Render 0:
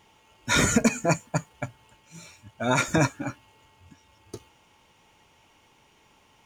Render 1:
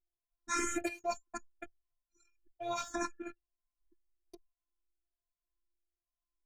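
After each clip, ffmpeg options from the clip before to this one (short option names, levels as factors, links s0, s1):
-filter_complex "[0:a]afftfilt=real='hypot(re,im)*cos(PI*b)':imag='0':win_size=512:overlap=0.75,anlmdn=0.0631,asplit=2[s0][s1];[s1]afreqshift=1.2[s2];[s0][s2]amix=inputs=2:normalize=1,volume=0.447"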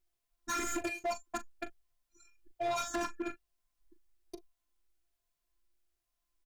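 -filter_complex "[0:a]acompressor=threshold=0.0158:ratio=6,asoftclip=type=hard:threshold=0.0126,asplit=2[s0][s1];[s1]adelay=39,volume=0.224[s2];[s0][s2]amix=inputs=2:normalize=0,volume=2.51"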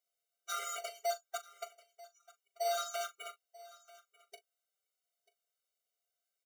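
-filter_complex "[0:a]acrossover=split=160|1600|2800[s0][s1][s2][s3];[s1]acrusher=samples=17:mix=1:aa=0.000001[s4];[s0][s4][s2][s3]amix=inputs=4:normalize=0,aecho=1:1:939:0.0944,afftfilt=real='re*eq(mod(floor(b*sr/1024/390),2),1)':imag='im*eq(mod(floor(b*sr/1024/390),2),1)':win_size=1024:overlap=0.75,volume=1.19"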